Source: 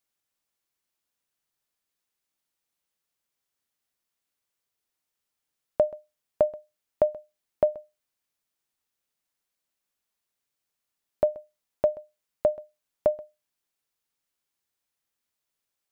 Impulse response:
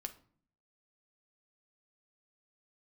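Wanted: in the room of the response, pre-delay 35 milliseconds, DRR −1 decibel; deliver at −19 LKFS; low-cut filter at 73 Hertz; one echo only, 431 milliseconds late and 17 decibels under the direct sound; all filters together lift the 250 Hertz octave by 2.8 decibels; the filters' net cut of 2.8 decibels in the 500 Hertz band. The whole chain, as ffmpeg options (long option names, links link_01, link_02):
-filter_complex "[0:a]highpass=73,equalizer=frequency=250:width_type=o:gain=5.5,equalizer=frequency=500:width_type=o:gain=-4.5,aecho=1:1:431:0.141,asplit=2[link_01][link_02];[1:a]atrim=start_sample=2205,adelay=35[link_03];[link_02][link_03]afir=irnorm=-1:irlink=0,volume=3.5dB[link_04];[link_01][link_04]amix=inputs=2:normalize=0,volume=10.5dB"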